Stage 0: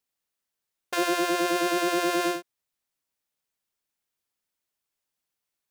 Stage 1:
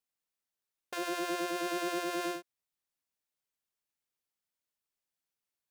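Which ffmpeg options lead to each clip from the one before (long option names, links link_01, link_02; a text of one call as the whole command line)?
ffmpeg -i in.wav -af "alimiter=limit=-16dB:level=0:latency=1:release=192,volume=-6.5dB" out.wav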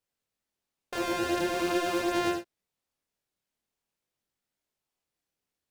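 ffmpeg -i in.wav -filter_complex "[0:a]highshelf=frequency=9400:gain=-6,asplit=2[link_01][link_02];[link_02]acrusher=samples=30:mix=1:aa=0.000001:lfo=1:lforange=18:lforate=0.97,volume=-7.5dB[link_03];[link_01][link_03]amix=inputs=2:normalize=0,flanger=delay=20:depth=6.7:speed=0.45,volume=7dB" out.wav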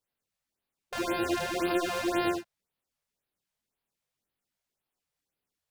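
ffmpeg -i in.wav -af "afftfilt=real='re*(1-between(b*sr/1024,270*pow(7500/270,0.5+0.5*sin(2*PI*1.9*pts/sr))/1.41,270*pow(7500/270,0.5+0.5*sin(2*PI*1.9*pts/sr))*1.41))':imag='im*(1-between(b*sr/1024,270*pow(7500/270,0.5+0.5*sin(2*PI*1.9*pts/sr))/1.41,270*pow(7500/270,0.5+0.5*sin(2*PI*1.9*pts/sr))*1.41))':win_size=1024:overlap=0.75" out.wav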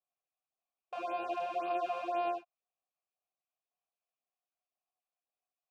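ffmpeg -i in.wav -filter_complex "[0:a]asplit=3[link_01][link_02][link_03];[link_01]bandpass=frequency=730:width_type=q:width=8,volume=0dB[link_04];[link_02]bandpass=frequency=1090:width_type=q:width=8,volume=-6dB[link_05];[link_03]bandpass=frequency=2440:width_type=q:width=8,volume=-9dB[link_06];[link_04][link_05][link_06]amix=inputs=3:normalize=0,volume=3.5dB" out.wav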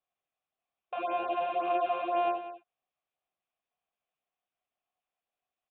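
ffmpeg -i in.wav -af "aecho=1:1:190:0.224,aresample=8000,aresample=44100,volume=5dB" out.wav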